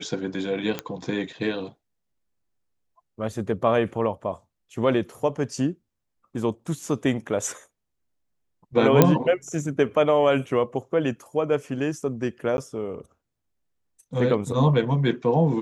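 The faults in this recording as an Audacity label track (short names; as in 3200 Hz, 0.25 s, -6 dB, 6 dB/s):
0.790000	0.790000	pop -12 dBFS
9.020000	9.020000	pop -1 dBFS
12.570000	12.580000	gap 11 ms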